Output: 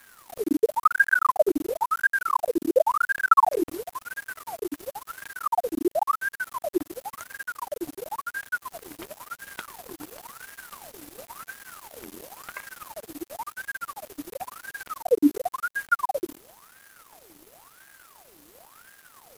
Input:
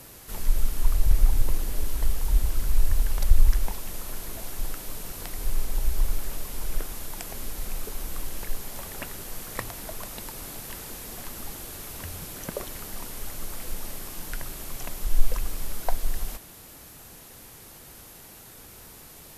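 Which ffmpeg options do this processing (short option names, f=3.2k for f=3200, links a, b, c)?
-af "aeval=exprs='max(val(0),0)':c=same,aeval=exprs='val(0)*sin(2*PI*960*n/s+960*0.7/0.95*sin(2*PI*0.95*n/s))':c=same"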